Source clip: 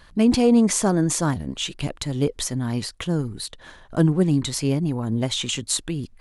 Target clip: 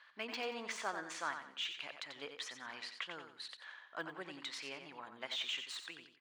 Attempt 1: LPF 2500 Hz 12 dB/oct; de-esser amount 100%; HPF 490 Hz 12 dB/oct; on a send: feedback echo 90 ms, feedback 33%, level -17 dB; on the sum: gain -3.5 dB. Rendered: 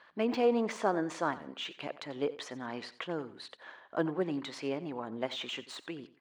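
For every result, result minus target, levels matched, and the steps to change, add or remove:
500 Hz band +7.5 dB; echo-to-direct -9 dB
change: HPF 1500 Hz 12 dB/oct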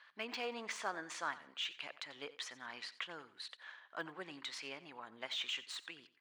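echo-to-direct -9 dB
change: feedback echo 90 ms, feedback 33%, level -8 dB

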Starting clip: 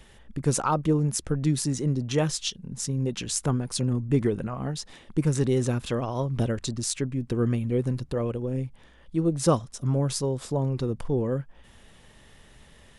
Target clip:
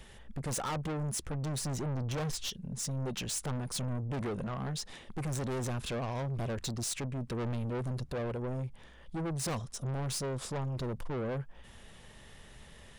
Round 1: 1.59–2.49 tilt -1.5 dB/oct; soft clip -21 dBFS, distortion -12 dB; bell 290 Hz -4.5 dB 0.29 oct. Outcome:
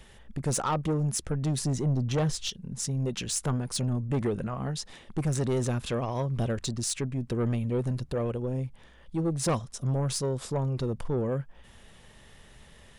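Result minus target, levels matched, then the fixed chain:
soft clip: distortion -8 dB
1.59–2.49 tilt -1.5 dB/oct; soft clip -32 dBFS, distortion -5 dB; bell 290 Hz -4.5 dB 0.29 oct

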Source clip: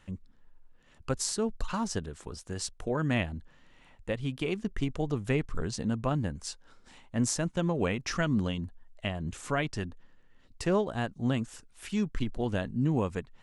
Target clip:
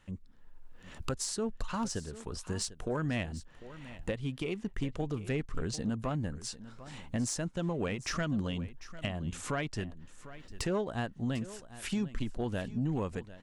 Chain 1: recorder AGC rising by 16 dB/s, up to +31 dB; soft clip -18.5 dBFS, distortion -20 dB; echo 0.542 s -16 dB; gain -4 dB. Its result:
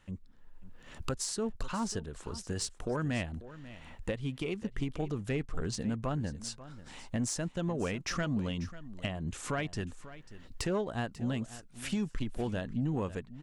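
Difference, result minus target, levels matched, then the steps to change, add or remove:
echo 0.206 s early
change: echo 0.748 s -16 dB

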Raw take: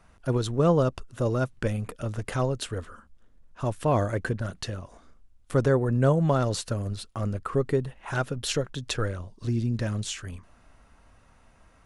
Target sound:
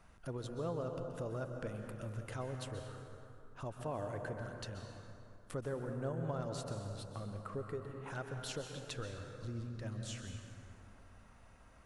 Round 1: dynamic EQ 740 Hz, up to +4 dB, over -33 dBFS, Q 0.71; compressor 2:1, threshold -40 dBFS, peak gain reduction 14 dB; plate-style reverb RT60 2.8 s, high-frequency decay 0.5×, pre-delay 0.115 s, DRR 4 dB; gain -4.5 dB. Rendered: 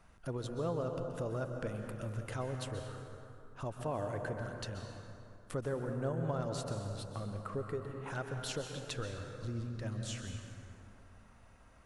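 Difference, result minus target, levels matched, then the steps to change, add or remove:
compressor: peak gain reduction -3 dB
change: compressor 2:1, threshold -46.5 dBFS, peak gain reduction 17 dB

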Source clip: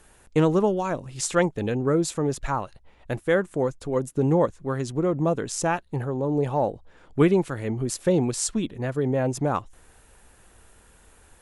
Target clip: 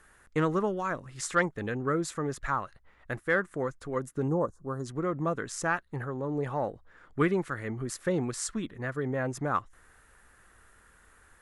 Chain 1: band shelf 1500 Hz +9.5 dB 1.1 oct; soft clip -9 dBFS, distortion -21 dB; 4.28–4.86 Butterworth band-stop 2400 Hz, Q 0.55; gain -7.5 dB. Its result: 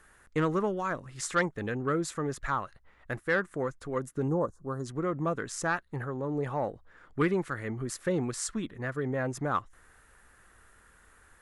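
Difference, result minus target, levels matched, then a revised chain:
soft clip: distortion +11 dB
band shelf 1500 Hz +9.5 dB 1.1 oct; soft clip -2.5 dBFS, distortion -32 dB; 4.28–4.86 Butterworth band-stop 2400 Hz, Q 0.55; gain -7.5 dB

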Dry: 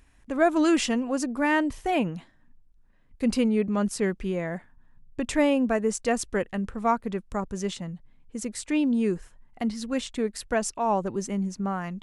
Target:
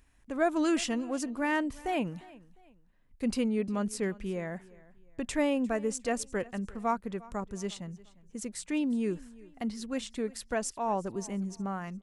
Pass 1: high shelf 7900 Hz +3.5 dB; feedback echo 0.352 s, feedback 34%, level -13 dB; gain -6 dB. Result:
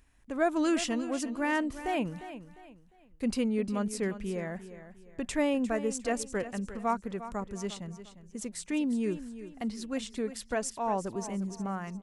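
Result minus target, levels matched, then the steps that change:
echo-to-direct +8.5 dB
change: feedback echo 0.352 s, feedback 34%, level -21.5 dB

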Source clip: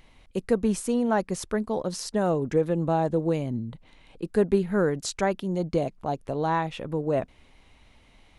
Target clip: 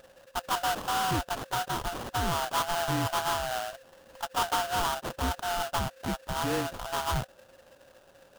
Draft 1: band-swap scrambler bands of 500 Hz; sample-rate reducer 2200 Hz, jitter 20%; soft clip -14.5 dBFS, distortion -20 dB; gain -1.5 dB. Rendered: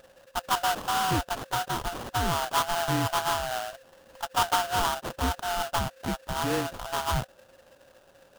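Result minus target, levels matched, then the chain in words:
soft clip: distortion -8 dB
band-swap scrambler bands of 500 Hz; sample-rate reducer 2200 Hz, jitter 20%; soft clip -21.5 dBFS, distortion -12 dB; gain -1.5 dB

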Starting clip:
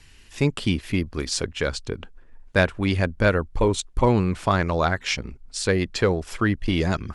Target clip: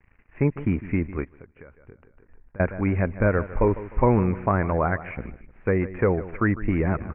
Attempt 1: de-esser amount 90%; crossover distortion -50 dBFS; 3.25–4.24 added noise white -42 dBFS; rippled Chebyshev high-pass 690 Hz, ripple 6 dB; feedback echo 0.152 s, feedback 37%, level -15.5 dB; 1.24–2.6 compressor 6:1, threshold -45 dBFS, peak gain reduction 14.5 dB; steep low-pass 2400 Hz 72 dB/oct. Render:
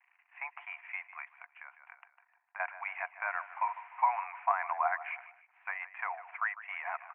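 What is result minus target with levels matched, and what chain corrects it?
500 Hz band -9.5 dB
de-esser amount 90%; crossover distortion -50 dBFS; 3.25–4.24 added noise white -42 dBFS; feedback echo 0.152 s, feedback 37%, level -15.5 dB; 1.24–2.6 compressor 6:1, threshold -45 dBFS, peak gain reduction 25.5 dB; steep low-pass 2400 Hz 72 dB/oct

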